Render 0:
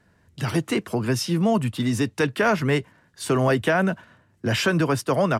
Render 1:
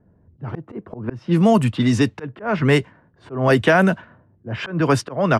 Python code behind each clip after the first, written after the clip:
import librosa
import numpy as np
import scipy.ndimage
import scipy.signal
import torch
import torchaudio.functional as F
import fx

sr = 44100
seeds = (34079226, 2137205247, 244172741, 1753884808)

y = fx.auto_swell(x, sr, attack_ms=236.0)
y = fx.env_lowpass(y, sr, base_hz=540.0, full_db=-16.5)
y = y * 10.0 ** (6.0 / 20.0)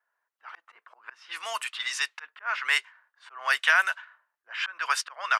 y = scipy.signal.sosfilt(scipy.signal.butter(4, 1200.0, 'highpass', fs=sr, output='sos'), x)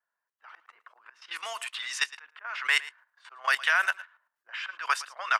y = fx.level_steps(x, sr, step_db=13)
y = y + 10.0 ** (-18.0 / 20.0) * np.pad(y, (int(112 * sr / 1000.0), 0))[:len(y)]
y = y * 10.0 ** (3.5 / 20.0)